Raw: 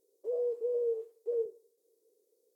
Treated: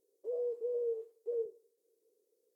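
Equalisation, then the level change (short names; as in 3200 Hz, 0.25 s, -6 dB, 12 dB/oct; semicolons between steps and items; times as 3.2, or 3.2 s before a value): low shelf 400 Hz +3.5 dB; -5.0 dB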